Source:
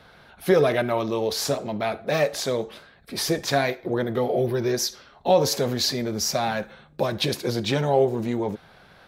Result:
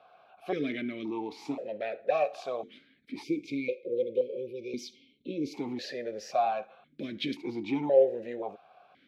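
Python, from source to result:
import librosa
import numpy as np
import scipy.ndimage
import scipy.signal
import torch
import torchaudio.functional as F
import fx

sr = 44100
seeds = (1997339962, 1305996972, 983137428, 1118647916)

y = fx.spec_erase(x, sr, start_s=3.23, length_s=2.31, low_hz=570.0, high_hz=2100.0)
y = fx.vowel_held(y, sr, hz=1.9)
y = F.gain(torch.from_numpy(y), 3.5).numpy()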